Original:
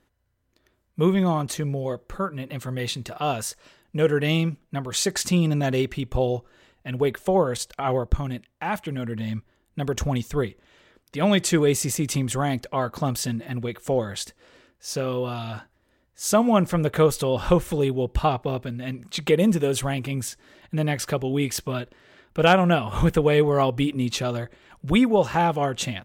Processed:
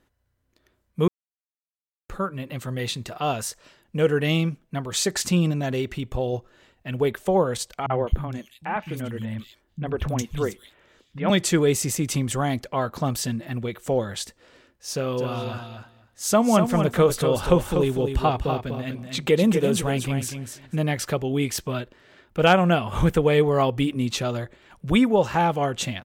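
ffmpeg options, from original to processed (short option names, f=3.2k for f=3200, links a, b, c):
-filter_complex "[0:a]asettb=1/sr,asplit=3[a][b][c];[a]atrim=end=5.514[d];[b]atrim=start=5.51:end=6.33,asetpts=PTS-STARTPTS,afade=t=in:d=0.004:c=qsin,afade=t=out:st=0.816:d=0.004:c=qsin,acompressor=threshold=-26dB:ratio=1.5:attack=3.2:release=140:knee=1:detection=peak[e];[c]atrim=start=6.326[f];[d][e]acrossfade=d=0.004:c1=hsin:c2=qsin[g];[g][f]acrossfade=d=0.004:c1=qsin:c2=hsin,asettb=1/sr,asplit=3[h][i][j];[h]atrim=end=7.864[k];[i]atrim=start=7.86:end=11.3,asetpts=PTS-STARTPTS,afade=t=in:d=0.004:c=qsin,afade=t=out:st=3.436:d=0.004:c=qsin,acrossover=split=200|3000[l][m][n];[m]adelay=40[o];[n]adelay=210[p];[l][o][p]amix=inputs=3:normalize=0,atrim=end_sample=151704[q];[j]atrim=start=11.296[r];[k][q]acrossfade=d=0.004:c1=hsin:c2=qsin[s];[s][r]acrossfade=d=0.004:c1=qsin:c2=hsin,asplit=3[t][u][v];[t]afade=t=out:st=15.17:d=0.02[w];[u]aecho=1:1:244|488|732:0.447|0.067|0.0101,afade=t=in:st=15.17:d=0.02,afade=t=out:st=20.75:d=0.02[x];[v]afade=t=in:st=20.75:d=0.02[y];[w][x][y]amix=inputs=3:normalize=0,asplit=3[z][aa][ab];[z]atrim=end=1.08,asetpts=PTS-STARTPTS,afade=t=out:st=1.076:d=0.004:c=hsin[ac];[aa]atrim=start=1.08:end=2.09,asetpts=PTS-STARTPTS,volume=0[ad];[ab]atrim=start=2.09,asetpts=PTS-STARTPTS,afade=t=in:d=0.004:c=hsin[ae];[ac][ad][ae]concat=n=3:v=0:a=1"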